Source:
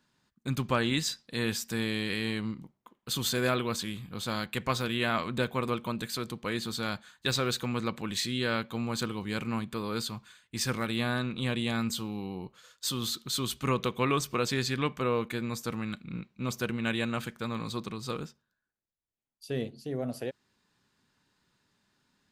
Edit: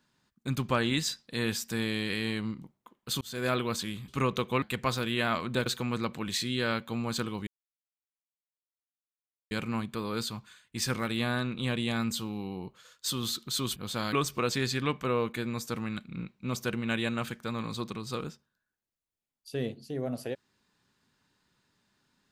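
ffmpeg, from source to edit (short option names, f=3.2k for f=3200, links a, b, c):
-filter_complex "[0:a]asplit=8[a][b][c][d][e][f][g][h];[a]atrim=end=3.21,asetpts=PTS-STARTPTS,afade=t=out:st=3.206:d=0.004:c=hsin[i];[b]atrim=start=3.21:end=4.082,asetpts=PTS-STARTPTS,afade=t=in:d=0.33[j];[c]atrim=start=13.548:end=14.092[k];[d]atrim=start=4.448:end=5.492[l];[e]atrim=start=7.488:end=9.3,asetpts=PTS-STARTPTS,afade=t=out:st=1.808:d=0.004:c=hsin,apad=pad_dur=2.04[m];[f]atrim=start=9.3:end=13.552,asetpts=PTS-STARTPTS,afade=t=in:d=0.004:c=hsin[n];[g]atrim=start=4.078:end=4.452[o];[h]atrim=start=14.088[p];[i][j]concat=n=2:v=0:a=1[q];[q][k]acrossfade=d=0.004:c1=hsin:c2=hsin[r];[r][l]acrossfade=d=0.004:c1=hsin:c2=hsin[s];[m][n]concat=n=2:v=0:a=1[t];[s][t]acrossfade=d=0.004:c1=hsin:c2=hsin[u];[u][o]acrossfade=d=0.004:c1=hsin:c2=hsin[v];[v][p]acrossfade=d=0.004:c1=hsin:c2=hsin"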